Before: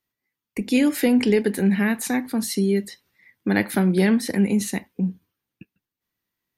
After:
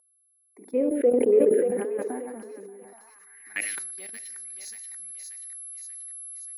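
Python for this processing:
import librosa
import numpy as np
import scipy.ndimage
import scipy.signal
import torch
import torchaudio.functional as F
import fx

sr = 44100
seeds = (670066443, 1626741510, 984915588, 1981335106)

y = fx.reverse_delay(x, sr, ms=101, wet_db=-6.5)
y = scipy.signal.sosfilt(scipy.signal.butter(4, 250.0, 'highpass', fs=sr, output='sos'), y)
y = fx.env_lowpass_down(y, sr, base_hz=1800.0, full_db=-16.5)
y = fx.dynamic_eq(y, sr, hz=630.0, q=1.8, threshold_db=-38.0, ratio=4.0, max_db=6)
y = fx.level_steps(y, sr, step_db=19)
y = (np.kron(scipy.signal.resample_poly(y, 1, 2), np.eye(2)[0]) * 2)[:len(y)]
y = y + 10.0 ** (-29.0 / 20.0) * np.sin(2.0 * np.pi * 11000.0 * np.arange(len(y)) / sr)
y = fx.env_phaser(y, sr, low_hz=400.0, high_hz=1200.0, full_db=-14.0)
y = 10.0 ** (-4.5 / 20.0) * np.tanh(y / 10.0 ** (-4.5 / 20.0))
y = fx.echo_thinned(y, sr, ms=583, feedback_pct=52, hz=830.0, wet_db=-5)
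y = fx.filter_sweep_bandpass(y, sr, from_hz=470.0, to_hz=4900.0, start_s=2.77, end_s=3.89, q=3.8)
y = fx.sustainer(y, sr, db_per_s=31.0)
y = y * 10.0 ** (7.0 / 20.0)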